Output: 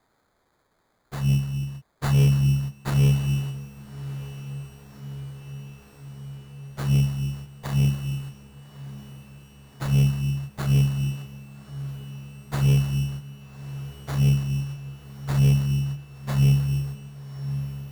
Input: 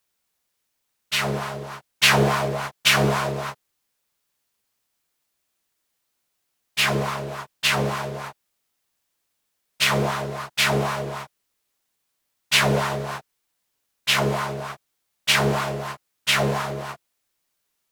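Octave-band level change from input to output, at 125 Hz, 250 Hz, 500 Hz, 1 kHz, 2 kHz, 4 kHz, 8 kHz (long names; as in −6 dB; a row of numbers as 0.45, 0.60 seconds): +9.0, +3.0, −14.0, −16.0, −17.0, −15.5, −11.0 decibels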